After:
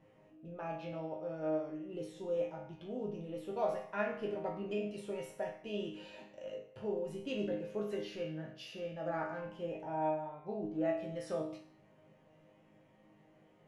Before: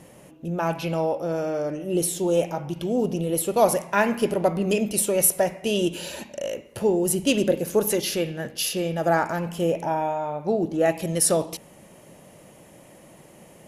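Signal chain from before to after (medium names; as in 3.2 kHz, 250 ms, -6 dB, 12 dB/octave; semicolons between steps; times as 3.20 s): low-pass 2.8 kHz 12 dB/octave; chord resonator G#2 major, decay 0.5 s; trim +1 dB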